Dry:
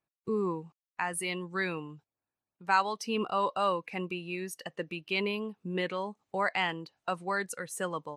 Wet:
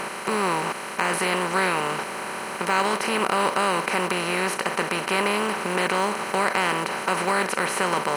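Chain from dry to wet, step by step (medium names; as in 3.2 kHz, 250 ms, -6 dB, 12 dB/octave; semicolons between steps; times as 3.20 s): spectral levelling over time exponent 0.2; in parallel at +1 dB: peak limiter -13 dBFS, peak gain reduction 10.5 dB; on the sum: short-mantissa float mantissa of 4-bit; trim -6 dB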